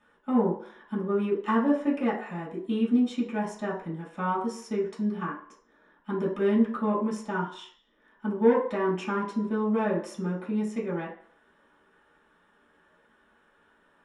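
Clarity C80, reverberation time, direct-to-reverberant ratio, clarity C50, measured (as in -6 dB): 10.5 dB, 0.55 s, -8.5 dB, 6.0 dB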